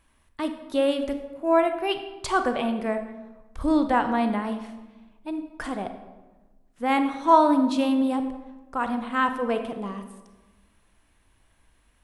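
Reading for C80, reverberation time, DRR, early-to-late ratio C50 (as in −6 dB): 11.0 dB, 1.2 s, 7.5 dB, 9.0 dB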